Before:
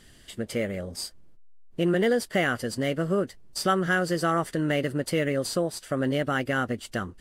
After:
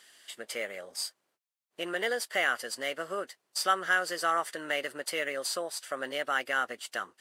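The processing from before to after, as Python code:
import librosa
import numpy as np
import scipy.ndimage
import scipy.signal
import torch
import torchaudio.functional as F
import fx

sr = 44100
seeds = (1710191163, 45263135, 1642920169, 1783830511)

y = scipy.signal.sosfilt(scipy.signal.butter(2, 780.0, 'highpass', fs=sr, output='sos'), x)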